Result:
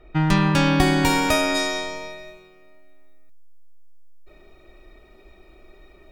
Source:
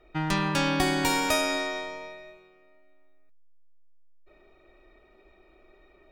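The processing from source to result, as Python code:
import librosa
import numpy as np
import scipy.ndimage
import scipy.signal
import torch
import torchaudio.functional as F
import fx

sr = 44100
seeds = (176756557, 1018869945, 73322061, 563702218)

y = fx.bass_treble(x, sr, bass_db=7, treble_db=fx.steps((0.0, -3.0), (1.54, 10.0)))
y = F.gain(torch.from_numpy(y), 5.0).numpy()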